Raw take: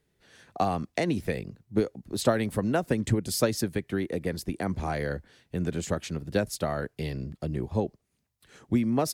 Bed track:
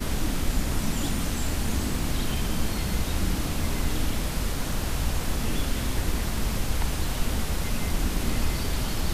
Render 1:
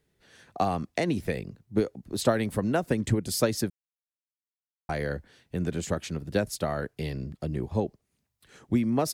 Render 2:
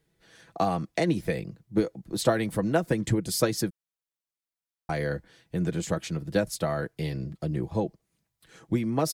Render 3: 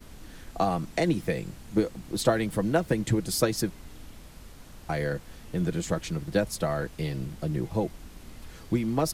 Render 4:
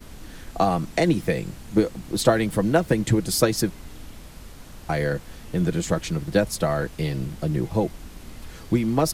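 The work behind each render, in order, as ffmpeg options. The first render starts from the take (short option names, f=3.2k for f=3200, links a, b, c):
-filter_complex "[0:a]asplit=3[a][b][c];[a]atrim=end=3.7,asetpts=PTS-STARTPTS,afade=t=out:st=3.696:d=0.004:c=hsin[d];[b]atrim=start=3.7:end=4.89,asetpts=PTS-STARTPTS,volume=0[e];[c]atrim=start=4.89,asetpts=PTS-STARTPTS,afade=t=in:d=0.004:c=hsin[f];[d][e][f]concat=n=3:v=0:a=1"
-af "bandreject=f=2.7k:w=25,aecho=1:1:6.1:0.47"
-filter_complex "[1:a]volume=-19.5dB[a];[0:a][a]amix=inputs=2:normalize=0"
-af "volume=5dB"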